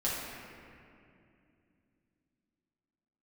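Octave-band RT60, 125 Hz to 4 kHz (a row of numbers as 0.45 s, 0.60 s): 3.7 s, 4.0 s, 2.8 s, 2.3 s, 2.4 s, 1.6 s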